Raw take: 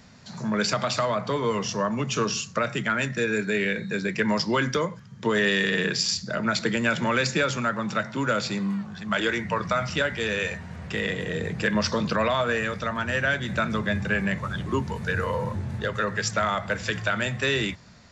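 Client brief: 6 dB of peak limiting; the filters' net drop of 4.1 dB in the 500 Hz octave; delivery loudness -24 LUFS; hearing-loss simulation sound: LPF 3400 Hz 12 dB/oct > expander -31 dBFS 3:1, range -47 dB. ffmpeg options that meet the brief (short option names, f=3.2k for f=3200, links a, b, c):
-af "equalizer=f=500:t=o:g=-5,alimiter=limit=-16.5dB:level=0:latency=1,lowpass=3.4k,agate=range=-47dB:threshold=-31dB:ratio=3,volume=4.5dB"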